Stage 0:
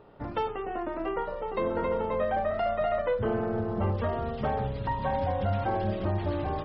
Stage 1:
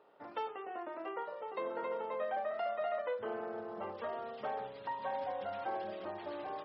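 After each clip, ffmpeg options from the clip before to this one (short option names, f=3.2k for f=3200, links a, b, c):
-af "highpass=440,volume=-7.5dB"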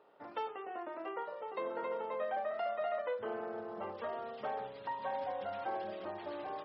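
-af anull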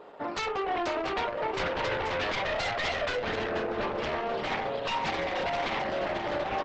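-af "aeval=exprs='0.0473*sin(PI/2*4.47*val(0)/0.0473)':c=same,aecho=1:1:485:0.422" -ar 48000 -c:a libopus -b:a 12k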